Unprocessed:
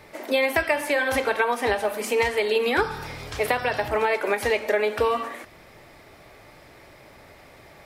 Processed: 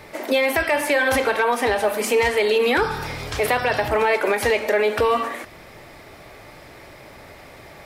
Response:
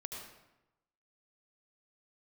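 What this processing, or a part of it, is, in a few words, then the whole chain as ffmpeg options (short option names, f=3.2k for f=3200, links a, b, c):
soft clipper into limiter: -af "asoftclip=type=tanh:threshold=-11dB,alimiter=limit=-17dB:level=0:latency=1:release=24,volume=6dB"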